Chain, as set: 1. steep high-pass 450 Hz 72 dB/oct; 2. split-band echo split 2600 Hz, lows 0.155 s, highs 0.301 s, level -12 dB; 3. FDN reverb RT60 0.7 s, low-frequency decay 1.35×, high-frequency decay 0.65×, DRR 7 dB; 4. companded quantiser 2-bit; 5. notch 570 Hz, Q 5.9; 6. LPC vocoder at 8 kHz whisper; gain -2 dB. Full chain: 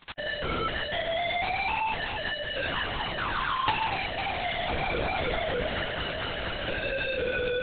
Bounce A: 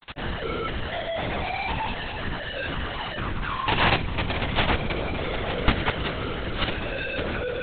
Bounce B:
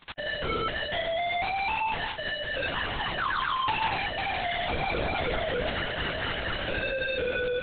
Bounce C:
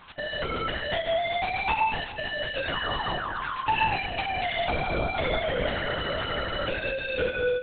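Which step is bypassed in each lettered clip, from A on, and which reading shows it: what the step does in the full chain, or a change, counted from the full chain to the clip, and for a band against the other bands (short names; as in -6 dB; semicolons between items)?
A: 1, 125 Hz band +7.5 dB; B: 2, crest factor change -3.5 dB; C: 4, distortion -4 dB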